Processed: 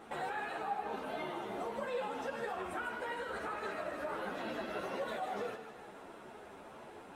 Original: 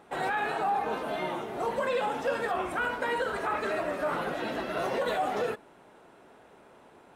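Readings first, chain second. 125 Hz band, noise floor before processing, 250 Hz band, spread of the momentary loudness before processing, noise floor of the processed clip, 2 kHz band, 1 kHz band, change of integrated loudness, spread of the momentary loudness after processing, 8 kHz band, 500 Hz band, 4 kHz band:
-9.0 dB, -56 dBFS, -7.5 dB, 4 LU, -53 dBFS, -9.0 dB, -9.0 dB, -9.0 dB, 13 LU, -8.0 dB, -9.0 dB, -8.5 dB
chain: compressor 4:1, threshold -43 dBFS, peak gain reduction 16 dB; split-band echo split 690 Hz, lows 81 ms, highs 0.153 s, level -8 dB; ensemble effect; gain +6 dB

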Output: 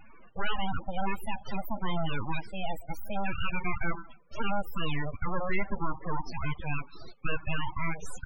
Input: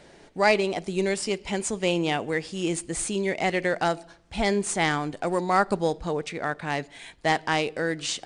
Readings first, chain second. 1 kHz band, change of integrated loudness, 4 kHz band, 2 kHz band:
-7.5 dB, -9.0 dB, -9.5 dB, -8.0 dB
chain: steep low-pass 9100 Hz 36 dB/oct; overdrive pedal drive 23 dB, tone 3000 Hz, clips at -7 dBFS; full-wave rectifier; loudest bins only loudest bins 16; gain -7.5 dB

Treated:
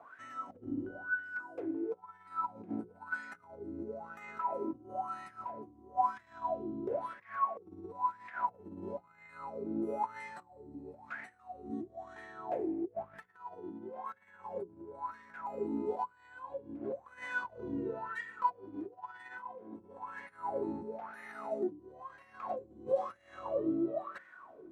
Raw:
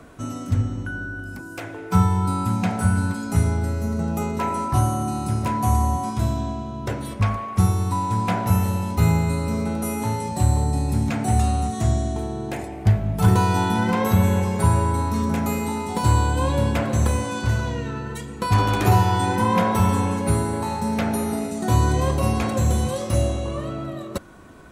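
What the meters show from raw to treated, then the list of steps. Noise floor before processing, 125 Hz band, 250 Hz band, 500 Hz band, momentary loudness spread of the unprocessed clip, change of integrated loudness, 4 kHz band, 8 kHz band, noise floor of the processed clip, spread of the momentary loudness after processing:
-35 dBFS, -37.5 dB, -17.5 dB, -11.5 dB, 10 LU, -17.0 dB, under -25 dB, under -35 dB, -63 dBFS, 13 LU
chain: negative-ratio compressor -26 dBFS, ratio -0.5; notches 60/120/180/240/300/360/420/480/540 Hz; wah 1 Hz 300–1900 Hz, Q 11; gain +2.5 dB

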